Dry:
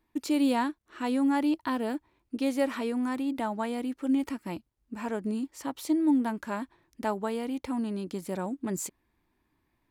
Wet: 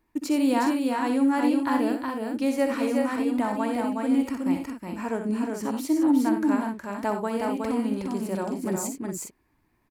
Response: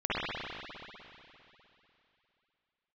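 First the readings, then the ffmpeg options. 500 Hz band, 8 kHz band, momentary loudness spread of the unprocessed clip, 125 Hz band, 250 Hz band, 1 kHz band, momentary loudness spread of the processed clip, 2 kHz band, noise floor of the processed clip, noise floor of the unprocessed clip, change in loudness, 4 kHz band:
+5.0 dB, +5.0 dB, 11 LU, +4.5 dB, +5.0 dB, +5.0 dB, 9 LU, +4.5 dB, −69 dBFS, −76 dBFS, +4.5 dB, +2.0 dB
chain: -filter_complex "[0:a]equalizer=frequency=3500:width_type=o:width=0.41:gain=-6.5,asplit=2[link_01][link_02];[link_02]aecho=0:1:62|89|366|411:0.398|0.251|0.631|0.422[link_03];[link_01][link_03]amix=inputs=2:normalize=0,volume=2.5dB"

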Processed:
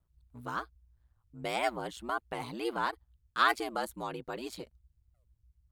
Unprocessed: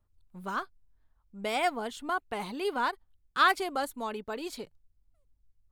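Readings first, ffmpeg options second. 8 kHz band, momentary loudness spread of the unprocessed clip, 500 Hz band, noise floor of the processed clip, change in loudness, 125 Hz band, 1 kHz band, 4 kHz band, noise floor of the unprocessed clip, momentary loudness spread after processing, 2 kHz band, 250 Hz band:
−3.0 dB, 18 LU, −3.0 dB, −76 dBFS, −3.0 dB, can't be measured, −3.0 dB, −3.0 dB, −73 dBFS, 18 LU, −3.0 dB, −2.5 dB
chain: -af "aeval=exprs='val(0)*sin(2*PI*60*n/s)':channel_layout=same"

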